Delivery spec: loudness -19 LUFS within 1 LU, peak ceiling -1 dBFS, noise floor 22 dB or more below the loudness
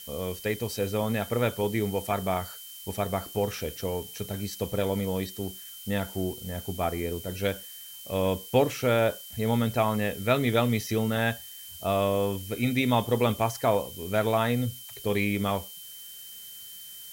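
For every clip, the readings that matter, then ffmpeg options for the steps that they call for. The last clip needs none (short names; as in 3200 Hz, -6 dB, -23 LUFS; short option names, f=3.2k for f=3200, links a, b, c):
steady tone 3100 Hz; tone level -47 dBFS; noise floor -44 dBFS; noise floor target -51 dBFS; loudness -28.5 LUFS; peak -9.5 dBFS; loudness target -19.0 LUFS
-> -af "bandreject=f=3.1k:w=30"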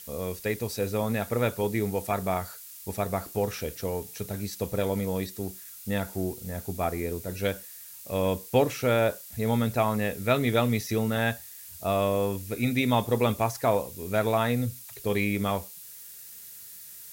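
steady tone none; noise floor -45 dBFS; noise floor target -51 dBFS
-> -af "afftdn=nr=6:nf=-45"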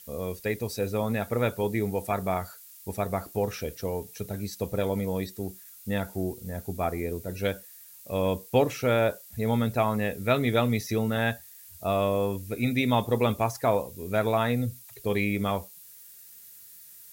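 noise floor -49 dBFS; noise floor target -51 dBFS
-> -af "afftdn=nr=6:nf=-49"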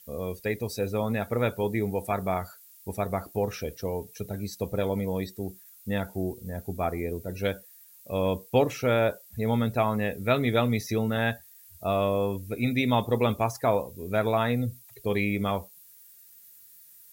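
noise floor -53 dBFS; loudness -28.5 LUFS; peak -9.5 dBFS; loudness target -19.0 LUFS
-> -af "volume=9.5dB,alimiter=limit=-1dB:level=0:latency=1"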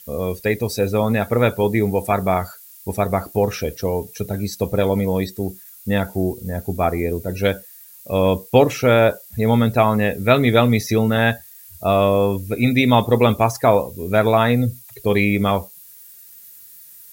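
loudness -19.0 LUFS; peak -1.0 dBFS; noise floor -44 dBFS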